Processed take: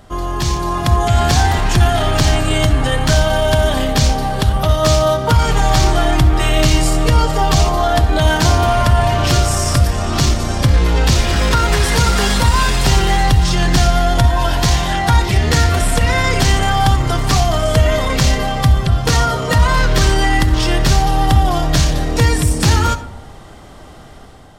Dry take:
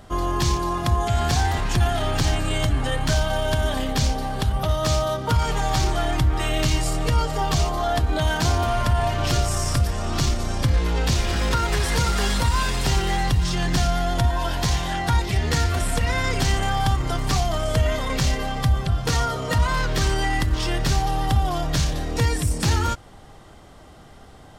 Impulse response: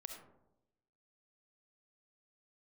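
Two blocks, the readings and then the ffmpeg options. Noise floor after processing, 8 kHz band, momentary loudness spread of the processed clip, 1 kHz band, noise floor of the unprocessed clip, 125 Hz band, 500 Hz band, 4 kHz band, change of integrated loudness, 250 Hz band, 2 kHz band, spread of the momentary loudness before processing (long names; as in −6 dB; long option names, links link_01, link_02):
−36 dBFS, +8.0 dB, 2 LU, +8.0 dB, −45 dBFS, +8.0 dB, +9.0 dB, +8.0 dB, +8.0 dB, +8.0 dB, +8.0 dB, 2 LU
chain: -filter_complex "[0:a]dynaudnorm=framelen=260:gausssize=5:maxgain=6.5dB,asplit=2[link_01][link_02];[1:a]atrim=start_sample=2205[link_03];[link_02][link_03]afir=irnorm=-1:irlink=0,volume=1dB[link_04];[link_01][link_04]amix=inputs=2:normalize=0,volume=-2dB"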